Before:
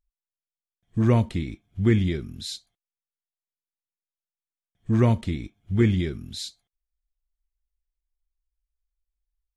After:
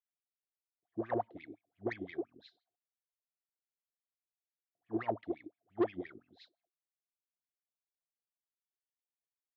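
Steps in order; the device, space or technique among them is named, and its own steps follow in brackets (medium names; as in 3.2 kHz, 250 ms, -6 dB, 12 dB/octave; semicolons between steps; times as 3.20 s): wah-wah guitar rig (wah-wah 5.8 Hz 350–2600 Hz, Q 15; valve stage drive 32 dB, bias 0.3; cabinet simulation 77–4500 Hz, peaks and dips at 110 Hz +6 dB, 300 Hz +9 dB, 710 Hz +10 dB, 2.4 kHz -9 dB); trim +4 dB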